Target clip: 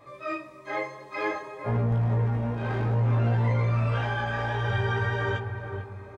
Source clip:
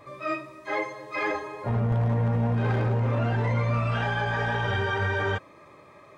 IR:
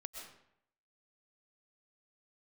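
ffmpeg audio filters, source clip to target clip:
-filter_complex "[0:a]asplit=2[a][b];[b]adelay=447,lowpass=f=1k:p=1,volume=-6dB,asplit=2[c][d];[d]adelay=447,lowpass=f=1k:p=1,volume=0.52,asplit=2[e][f];[f]adelay=447,lowpass=f=1k:p=1,volume=0.52,asplit=2[g][h];[h]adelay=447,lowpass=f=1k:p=1,volume=0.52,asplit=2[i][j];[j]adelay=447,lowpass=f=1k:p=1,volume=0.52,asplit=2[k][l];[l]adelay=447,lowpass=f=1k:p=1,volume=0.52[m];[a][c][e][g][i][k][m]amix=inputs=7:normalize=0,flanger=delay=17:depth=3.7:speed=0.58"

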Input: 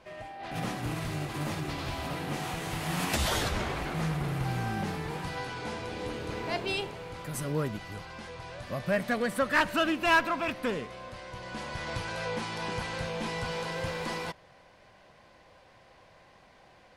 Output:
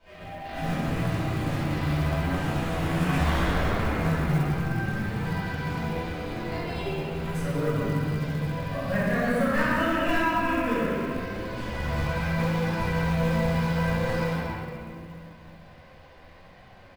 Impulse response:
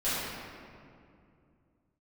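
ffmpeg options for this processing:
-filter_complex "[0:a]highshelf=f=5.3k:g=-11,asplit=2[a][b];[b]adelay=67,lowpass=f=2k:p=1,volume=-5dB,asplit=2[c][d];[d]adelay=67,lowpass=f=2k:p=1,volume=0.52,asplit=2[e][f];[f]adelay=67,lowpass=f=2k:p=1,volume=0.52,asplit=2[g][h];[h]adelay=67,lowpass=f=2k:p=1,volume=0.52,asplit=2[i][j];[j]adelay=67,lowpass=f=2k:p=1,volume=0.52,asplit=2[k][l];[l]adelay=67,lowpass=f=2k:p=1,volume=0.52,asplit=2[m][n];[n]adelay=67,lowpass=f=2k:p=1,volume=0.52[o];[a][c][e][g][i][k][m][o]amix=inputs=8:normalize=0,asettb=1/sr,asplit=3[p][q][r];[p]atrim=end=4.394[s];[q]atrim=start=4.39:end=6.83,asetpts=PTS-STARTPTS,afade=t=in:d=0.004:c=qsin,afade=t=out:st=2.436:d=0.004:c=qsin,acompressor=threshold=-33dB:ratio=5[t];[r]atrim=start=6.826[u];[s][t]acrossfade=d=0.004:c1=hsin:c2=qsin[v];[v][u]acrossfade=d=0.004:c1=qsin:c2=hsin,equalizer=f=570:w=0.33:g=-6.5[w];[1:a]atrim=start_sample=2205[x];[w][x]afir=irnorm=-1:irlink=0,flanger=delay=9.1:depth=4.9:regen=-34:speed=0.78:shape=triangular,acrossover=split=240|2400|5500[y][z][aa][ab];[y]acompressor=threshold=-27dB:ratio=4[ac];[z]acompressor=threshold=-26dB:ratio=4[ad];[aa]acompressor=threshold=-52dB:ratio=4[ae];[ab]acompressor=threshold=-52dB:ratio=4[af];[ac][ad][ae][af]amix=inputs=4:normalize=0,acrusher=bits=7:mode=log:mix=0:aa=0.000001,volume=3dB"

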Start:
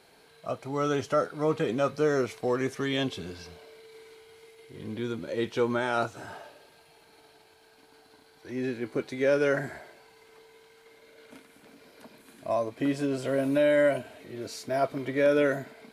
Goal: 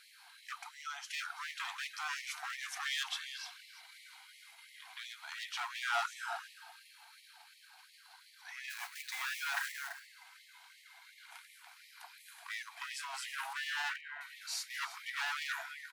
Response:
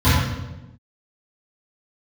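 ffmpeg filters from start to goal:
-filter_complex "[0:a]asettb=1/sr,asplit=3[a][b][c];[a]atrim=end=0.634[d];[b]atrim=start=0.63:end=1.11,asetpts=PTS-STARTPTS,afade=t=in:d=0.004:c=qsin,afade=t=out:st=0.476:d=0.004:c=qsin,acompressor=threshold=-32dB:ratio=6[e];[c]atrim=start=1.106[f];[d][e]acrossfade=d=0.004:c1=hsin:c2=qsin[g];[g][f]acrossfade=d=0.004:c1=qsin:c2=hsin,asplit=3[h][i][j];[h]afade=t=out:st=8.69:d=0.02[k];[i]acrusher=bits=2:mode=log:mix=0:aa=0.000001,afade=t=in:st=8.69:d=0.02,afade=t=out:st=9.71:d=0.02[l];[j]afade=t=in:st=9.71:d=0.02[m];[k][l][m]amix=inputs=3:normalize=0,asettb=1/sr,asplit=3[n][o][p];[n]atrim=end=13.534[q];[o]atrim=start=13.53:end=14.21,asetpts=PTS-STARTPTS,afade=t=in:d=0.004:c=qsin,afade=t=out:st=0.676:d=0.004:c=qsin,highpass=300,lowpass=2.3k[r];[p]atrim=start=14.206[s];[q][r]acrossfade=d=0.004:c1=hsin:c2=qsin[t];[t][s]acrossfade=d=0.004:c1=qsin:c2=hsin,aecho=1:1:337:0.178,asoftclip=type=hard:threshold=-28.5dB,afftfilt=real='re*gte(b*sr/1024,660*pow(1800/660,0.5+0.5*sin(2*PI*2.8*pts/sr)))':imag='im*gte(b*sr/1024,660*pow(1800/660,0.5+0.5*sin(2*PI*2.8*pts/sr)))':win_size=1024:overlap=0.75,volume=2dB"

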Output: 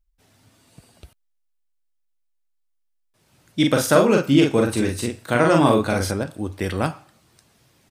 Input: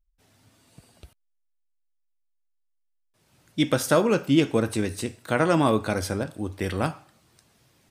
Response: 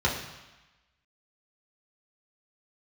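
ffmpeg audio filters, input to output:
-filter_complex "[0:a]asplit=3[a][b][c];[a]afade=t=out:st=3.61:d=0.02[d];[b]asplit=2[e][f];[f]adelay=42,volume=-3dB[g];[e][g]amix=inputs=2:normalize=0,afade=t=in:st=3.61:d=0.02,afade=t=out:st=6.1:d=0.02[h];[c]afade=t=in:st=6.1:d=0.02[i];[d][h][i]amix=inputs=3:normalize=0,volume=3dB"

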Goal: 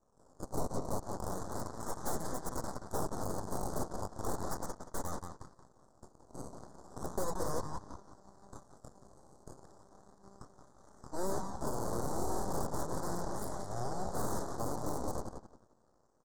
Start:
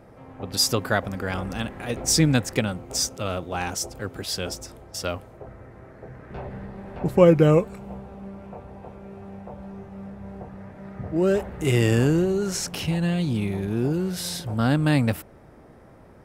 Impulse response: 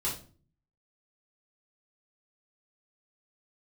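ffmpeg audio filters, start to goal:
-filter_complex "[0:a]highpass=690,equalizer=f=1.1k:t=o:w=1.6:g=-10.5,acompressor=threshold=-33dB:ratio=8,acrusher=samples=18:mix=1:aa=0.000001:lfo=1:lforange=18:lforate=0.35,aresample=16000,aresample=44100,asoftclip=type=tanh:threshold=-26.5dB,asplit=2[a][b];[b]adelay=177,lowpass=f=4.9k:p=1,volume=-6.5dB,asplit=2[c][d];[d]adelay=177,lowpass=f=4.9k:p=1,volume=0.41,asplit=2[e][f];[f]adelay=177,lowpass=f=4.9k:p=1,volume=0.41,asplit=2[g][h];[h]adelay=177,lowpass=f=4.9k:p=1,volume=0.41,asplit=2[i][j];[j]adelay=177,lowpass=f=4.9k:p=1,volume=0.41[k];[a][c][e][g][i][k]amix=inputs=6:normalize=0,aeval=exprs='0.0531*(cos(1*acos(clip(val(0)/0.0531,-1,1)))-cos(1*PI/2))+0.00944*(cos(7*acos(clip(val(0)/0.0531,-1,1)))-cos(7*PI/2))+0.0266*(cos(8*acos(clip(val(0)/0.0531,-1,1)))-cos(8*PI/2))':c=same,asuperstop=centerf=2600:order=4:qfactor=0.54,volume=-2dB"

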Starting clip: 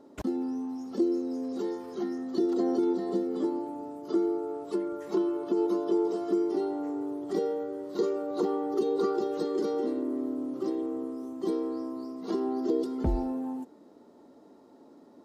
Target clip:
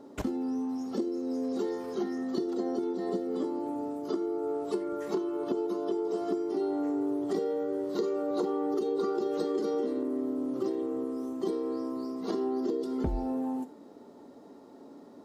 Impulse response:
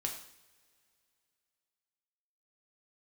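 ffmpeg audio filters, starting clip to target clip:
-filter_complex "[0:a]acompressor=threshold=-31dB:ratio=6,asplit=2[a][b];[1:a]atrim=start_sample=2205,atrim=end_sample=4410[c];[b][c]afir=irnorm=-1:irlink=0,volume=-4dB[d];[a][d]amix=inputs=2:normalize=0"

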